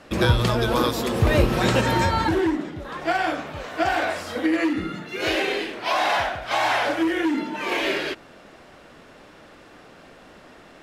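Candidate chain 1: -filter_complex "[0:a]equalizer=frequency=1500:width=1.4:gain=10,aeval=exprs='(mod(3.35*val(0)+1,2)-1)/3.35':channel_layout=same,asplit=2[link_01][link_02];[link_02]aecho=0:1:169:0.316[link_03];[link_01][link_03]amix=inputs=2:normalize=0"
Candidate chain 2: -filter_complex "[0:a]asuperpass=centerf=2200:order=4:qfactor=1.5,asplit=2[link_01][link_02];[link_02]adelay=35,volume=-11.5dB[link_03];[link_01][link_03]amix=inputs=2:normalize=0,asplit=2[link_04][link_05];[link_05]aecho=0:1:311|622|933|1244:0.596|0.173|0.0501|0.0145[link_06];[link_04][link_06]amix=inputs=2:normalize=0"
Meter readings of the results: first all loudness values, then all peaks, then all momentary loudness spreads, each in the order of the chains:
−18.5, −29.0 LKFS; −8.0, −15.0 dBFS; 9, 8 LU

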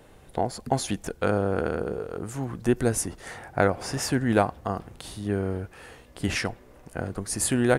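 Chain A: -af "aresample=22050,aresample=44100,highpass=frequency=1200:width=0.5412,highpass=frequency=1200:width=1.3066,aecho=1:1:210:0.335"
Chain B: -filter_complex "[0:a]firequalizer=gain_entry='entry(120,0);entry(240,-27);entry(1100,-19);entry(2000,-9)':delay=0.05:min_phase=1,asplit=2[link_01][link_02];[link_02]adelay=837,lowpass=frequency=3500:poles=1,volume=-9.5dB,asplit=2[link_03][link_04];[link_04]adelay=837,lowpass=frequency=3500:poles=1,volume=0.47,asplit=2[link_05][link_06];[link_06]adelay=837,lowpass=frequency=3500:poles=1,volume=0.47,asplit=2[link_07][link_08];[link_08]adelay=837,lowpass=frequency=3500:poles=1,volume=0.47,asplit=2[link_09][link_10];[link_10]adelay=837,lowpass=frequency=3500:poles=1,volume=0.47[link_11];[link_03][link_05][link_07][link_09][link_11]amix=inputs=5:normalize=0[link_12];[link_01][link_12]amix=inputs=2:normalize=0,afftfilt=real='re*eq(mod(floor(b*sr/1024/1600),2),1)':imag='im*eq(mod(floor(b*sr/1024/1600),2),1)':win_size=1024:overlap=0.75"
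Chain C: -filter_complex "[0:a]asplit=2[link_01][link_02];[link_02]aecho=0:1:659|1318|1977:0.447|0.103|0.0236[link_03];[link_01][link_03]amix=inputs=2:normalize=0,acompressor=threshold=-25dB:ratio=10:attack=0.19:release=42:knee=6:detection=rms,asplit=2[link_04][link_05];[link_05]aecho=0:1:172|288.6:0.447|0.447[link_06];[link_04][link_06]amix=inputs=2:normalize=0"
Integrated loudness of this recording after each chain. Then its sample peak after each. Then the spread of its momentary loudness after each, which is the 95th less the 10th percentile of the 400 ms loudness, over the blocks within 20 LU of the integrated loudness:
−34.5, −46.0, −32.5 LKFS; −12.5, −27.0, −18.0 dBFS; 15, 19, 5 LU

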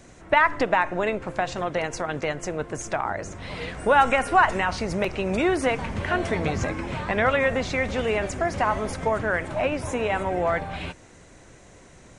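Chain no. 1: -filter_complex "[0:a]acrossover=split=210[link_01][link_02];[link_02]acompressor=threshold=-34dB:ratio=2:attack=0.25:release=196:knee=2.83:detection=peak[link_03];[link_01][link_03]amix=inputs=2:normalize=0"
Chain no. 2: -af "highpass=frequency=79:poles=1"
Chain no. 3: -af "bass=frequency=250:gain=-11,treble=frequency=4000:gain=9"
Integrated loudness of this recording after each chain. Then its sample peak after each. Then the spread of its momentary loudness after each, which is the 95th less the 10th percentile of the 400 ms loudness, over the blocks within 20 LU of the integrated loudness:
−32.5, −24.5, −25.0 LKFS; −16.5, −5.5, −5.0 dBFS; 7, 11, 10 LU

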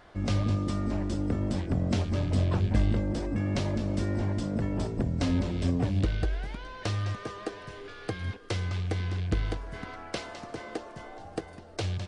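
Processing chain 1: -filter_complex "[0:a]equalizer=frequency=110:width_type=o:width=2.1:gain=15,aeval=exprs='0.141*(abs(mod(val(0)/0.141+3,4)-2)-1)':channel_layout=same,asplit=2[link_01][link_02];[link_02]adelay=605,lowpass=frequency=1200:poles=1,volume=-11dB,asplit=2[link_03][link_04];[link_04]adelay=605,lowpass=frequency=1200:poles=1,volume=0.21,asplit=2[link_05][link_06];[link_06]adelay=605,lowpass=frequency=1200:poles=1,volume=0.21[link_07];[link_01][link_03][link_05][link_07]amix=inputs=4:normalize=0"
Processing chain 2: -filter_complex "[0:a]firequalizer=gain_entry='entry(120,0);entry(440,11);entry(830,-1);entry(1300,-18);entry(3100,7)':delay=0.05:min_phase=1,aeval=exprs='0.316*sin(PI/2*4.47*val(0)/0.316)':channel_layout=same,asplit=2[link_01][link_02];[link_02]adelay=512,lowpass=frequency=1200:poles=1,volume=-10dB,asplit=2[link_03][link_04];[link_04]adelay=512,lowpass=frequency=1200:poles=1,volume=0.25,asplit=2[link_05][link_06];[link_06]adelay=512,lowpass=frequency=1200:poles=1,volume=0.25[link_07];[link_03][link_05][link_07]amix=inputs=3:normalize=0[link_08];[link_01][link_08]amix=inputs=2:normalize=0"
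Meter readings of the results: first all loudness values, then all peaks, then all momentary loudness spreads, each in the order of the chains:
−24.0, −15.5 LKFS; −14.5, −7.0 dBFS; 13, 7 LU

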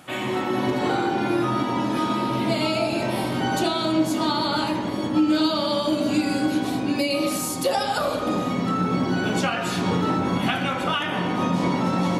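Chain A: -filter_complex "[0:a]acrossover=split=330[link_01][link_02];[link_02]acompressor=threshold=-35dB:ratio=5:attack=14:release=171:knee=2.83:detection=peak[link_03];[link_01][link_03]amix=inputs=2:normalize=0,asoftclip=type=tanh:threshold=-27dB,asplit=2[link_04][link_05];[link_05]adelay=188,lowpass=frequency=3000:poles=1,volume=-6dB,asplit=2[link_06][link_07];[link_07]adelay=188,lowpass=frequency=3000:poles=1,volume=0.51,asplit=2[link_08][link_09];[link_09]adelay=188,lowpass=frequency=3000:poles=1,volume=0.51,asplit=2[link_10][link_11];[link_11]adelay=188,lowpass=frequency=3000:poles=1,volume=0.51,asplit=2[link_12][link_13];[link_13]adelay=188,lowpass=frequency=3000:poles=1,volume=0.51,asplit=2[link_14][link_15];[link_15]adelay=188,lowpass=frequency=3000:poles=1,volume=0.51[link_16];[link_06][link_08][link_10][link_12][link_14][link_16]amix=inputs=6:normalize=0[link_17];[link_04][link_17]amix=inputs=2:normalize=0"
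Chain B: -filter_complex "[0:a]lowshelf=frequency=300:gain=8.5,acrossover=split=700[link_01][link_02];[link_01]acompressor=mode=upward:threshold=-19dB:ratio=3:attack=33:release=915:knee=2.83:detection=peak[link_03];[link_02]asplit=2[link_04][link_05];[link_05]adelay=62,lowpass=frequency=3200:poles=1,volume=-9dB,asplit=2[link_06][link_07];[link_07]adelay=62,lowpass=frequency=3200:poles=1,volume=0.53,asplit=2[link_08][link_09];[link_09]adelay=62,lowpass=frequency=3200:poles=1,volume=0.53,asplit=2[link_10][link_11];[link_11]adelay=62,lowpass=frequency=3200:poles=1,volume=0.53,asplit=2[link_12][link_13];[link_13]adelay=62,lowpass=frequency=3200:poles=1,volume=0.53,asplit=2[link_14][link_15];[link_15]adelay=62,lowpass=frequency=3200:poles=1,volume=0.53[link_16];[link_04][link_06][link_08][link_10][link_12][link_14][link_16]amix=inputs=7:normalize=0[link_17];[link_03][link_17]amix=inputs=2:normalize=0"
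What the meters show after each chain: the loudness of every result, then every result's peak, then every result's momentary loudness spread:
−30.5, −19.5 LKFS; −21.5, −6.0 dBFS; 3, 3 LU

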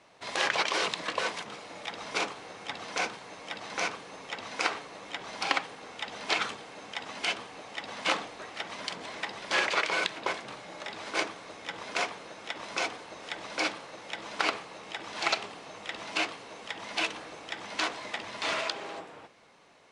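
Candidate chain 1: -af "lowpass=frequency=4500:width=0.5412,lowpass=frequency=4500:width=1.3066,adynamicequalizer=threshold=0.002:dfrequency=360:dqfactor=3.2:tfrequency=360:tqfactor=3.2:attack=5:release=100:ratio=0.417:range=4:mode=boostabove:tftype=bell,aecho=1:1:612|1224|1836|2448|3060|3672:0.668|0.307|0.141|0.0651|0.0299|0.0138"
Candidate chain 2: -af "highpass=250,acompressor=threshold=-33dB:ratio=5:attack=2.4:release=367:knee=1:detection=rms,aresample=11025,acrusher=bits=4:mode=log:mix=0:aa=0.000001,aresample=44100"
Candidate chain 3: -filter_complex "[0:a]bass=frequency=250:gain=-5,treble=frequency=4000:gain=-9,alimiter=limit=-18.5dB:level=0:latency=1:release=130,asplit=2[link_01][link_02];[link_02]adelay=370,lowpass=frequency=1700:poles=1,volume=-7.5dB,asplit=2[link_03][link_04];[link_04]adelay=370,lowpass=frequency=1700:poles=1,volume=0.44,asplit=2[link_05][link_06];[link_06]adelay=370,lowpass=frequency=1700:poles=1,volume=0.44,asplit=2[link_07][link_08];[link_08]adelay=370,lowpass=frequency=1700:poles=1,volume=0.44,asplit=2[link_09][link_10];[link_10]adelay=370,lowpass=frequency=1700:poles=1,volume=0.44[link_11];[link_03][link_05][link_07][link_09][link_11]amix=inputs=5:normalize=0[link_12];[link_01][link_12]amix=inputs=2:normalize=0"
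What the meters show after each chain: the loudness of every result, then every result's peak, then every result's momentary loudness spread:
−31.5, −41.5, −35.5 LKFS; −9.5, −20.5, −17.5 dBFS; 9, 7, 10 LU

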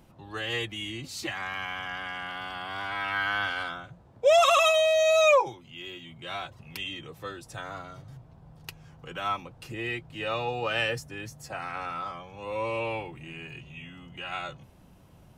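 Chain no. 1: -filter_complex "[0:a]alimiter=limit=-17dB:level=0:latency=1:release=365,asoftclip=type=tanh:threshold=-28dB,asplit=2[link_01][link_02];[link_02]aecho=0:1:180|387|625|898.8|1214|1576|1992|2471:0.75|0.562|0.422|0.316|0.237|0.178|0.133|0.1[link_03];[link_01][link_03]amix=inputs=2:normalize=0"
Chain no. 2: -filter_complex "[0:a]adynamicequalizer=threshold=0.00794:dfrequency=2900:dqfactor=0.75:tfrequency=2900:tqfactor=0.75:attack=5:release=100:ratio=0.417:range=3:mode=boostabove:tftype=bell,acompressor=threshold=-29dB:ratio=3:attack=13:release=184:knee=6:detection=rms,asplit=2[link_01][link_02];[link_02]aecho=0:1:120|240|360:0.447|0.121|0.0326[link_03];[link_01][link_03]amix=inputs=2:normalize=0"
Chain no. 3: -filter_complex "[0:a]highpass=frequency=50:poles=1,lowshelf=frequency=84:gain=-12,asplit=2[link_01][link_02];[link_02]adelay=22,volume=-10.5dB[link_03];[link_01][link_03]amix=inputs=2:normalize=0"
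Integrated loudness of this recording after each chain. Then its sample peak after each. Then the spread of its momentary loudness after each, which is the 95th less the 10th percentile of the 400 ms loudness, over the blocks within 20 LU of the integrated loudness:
−32.0, −32.0, −27.0 LKFS; −18.5, −17.0, −10.0 dBFS; 11, 16, 22 LU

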